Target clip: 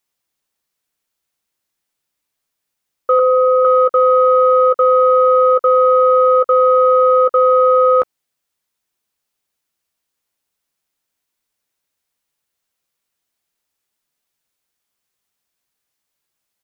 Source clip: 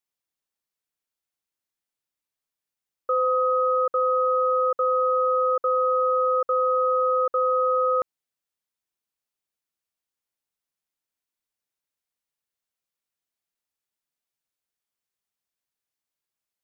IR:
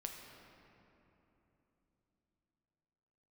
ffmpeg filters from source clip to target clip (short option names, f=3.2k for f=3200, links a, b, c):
-filter_complex "[0:a]asettb=1/sr,asplit=3[a][b][c];[a]atrim=end=3.194[d];[b]atrim=start=3.19:end=3.65,asetpts=PTS-STARTPTS,afade=t=in:d=0.004:c=qsin,afade=t=out:st=0.456:d=0.004:c=qsin,lowpass=1.2k[e];[c]atrim=start=3.646[f];[d][e]acrossfade=d=0.004:c1=hsin:c2=qsin[g];[g][f]acrossfade=d=0.004:c1=qsin:c2=hsin,acontrast=43,asplit=2[h][i];[i]adelay=14,volume=-12dB[j];[h][j]amix=inputs=2:normalize=0,volume=5dB"